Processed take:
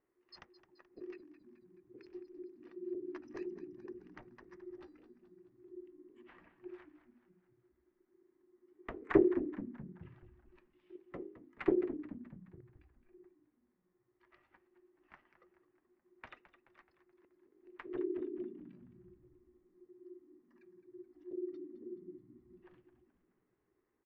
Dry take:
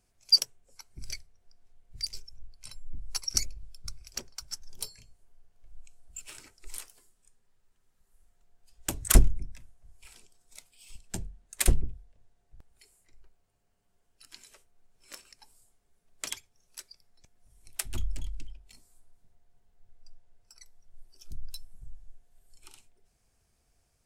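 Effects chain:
transistor ladder low-pass 1,800 Hz, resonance 50%
ring modulation 360 Hz
echo with shifted repeats 214 ms, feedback 54%, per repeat −59 Hz, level −13 dB
level +2 dB

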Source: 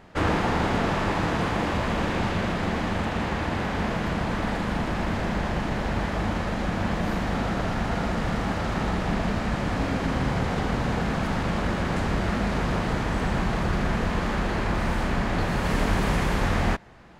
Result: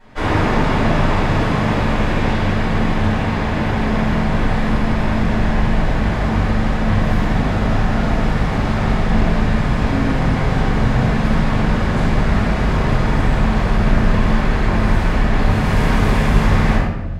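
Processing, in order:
rectangular room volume 430 cubic metres, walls mixed, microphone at 8.7 metres
level −10.5 dB

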